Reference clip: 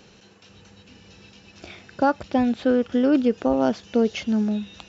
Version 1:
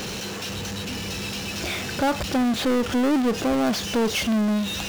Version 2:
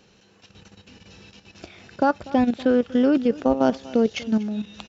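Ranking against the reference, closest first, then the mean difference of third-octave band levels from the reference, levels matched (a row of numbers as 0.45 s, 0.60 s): 2, 1; 2.0 dB, 15.0 dB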